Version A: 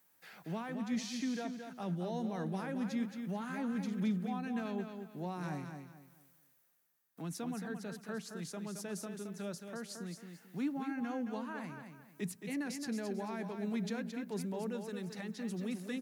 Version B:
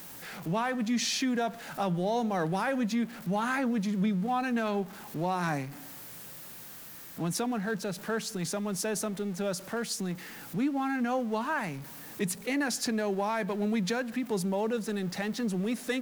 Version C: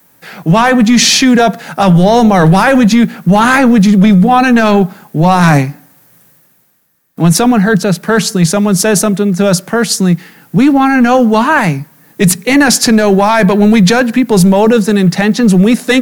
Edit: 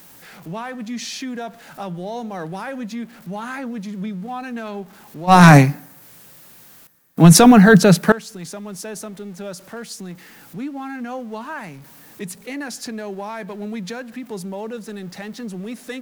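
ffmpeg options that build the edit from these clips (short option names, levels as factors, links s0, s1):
-filter_complex "[2:a]asplit=2[s0][s1];[1:a]asplit=3[s2][s3][s4];[s2]atrim=end=5.33[s5];[s0]atrim=start=5.27:end=6.05[s6];[s3]atrim=start=5.99:end=6.872[s7];[s1]atrim=start=6.868:end=8.122[s8];[s4]atrim=start=8.118[s9];[s5][s6]acrossfade=d=0.06:c1=tri:c2=tri[s10];[s10][s7]acrossfade=d=0.06:c1=tri:c2=tri[s11];[s11][s8]acrossfade=d=0.004:c1=hsin:c2=hsin[s12];[s12][s9]acrossfade=d=0.004:c1=hsin:c2=hsin"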